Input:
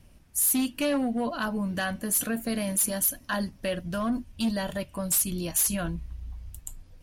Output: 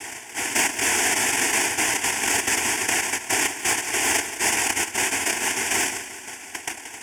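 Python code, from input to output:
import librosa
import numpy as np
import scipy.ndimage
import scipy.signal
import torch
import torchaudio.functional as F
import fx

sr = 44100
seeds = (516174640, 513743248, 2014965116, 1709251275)

p1 = fx.bin_compress(x, sr, power=0.6)
p2 = scipy.signal.sosfilt(scipy.signal.butter(4, 210.0, 'highpass', fs=sr, output='sos'), p1)
p3 = fx.dereverb_blind(p2, sr, rt60_s=1.2)
p4 = fx.hum_notches(p3, sr, base_hz=60, count=6)
p5 = fx.over_compress(p4, sr, threshold_db=-34.0, ratio=-1.0)
p6 = p4 + (p5 * librosa.db_to_amplitude(1.0))
p7 = fx.notch_comb(p6, sr, f0_hz=320.0)
p8 = fx.noise_vocoder(p7, sr, seeds[0], bands=1)
p9 = np.clip(p8, -10.0 ** (-16.0 / 20.0), 10.0 ** (-16.0 / 20.0))
p10 = fx.fixed_phaser(p9, sr, hz=820.0, stages=8)
p11 = fx.echo_feedback(p10, sr, ms=177, feedback_pct=57, wet_db=-12.5)
y = p11 * librosa.db_to_amplitude(7.5)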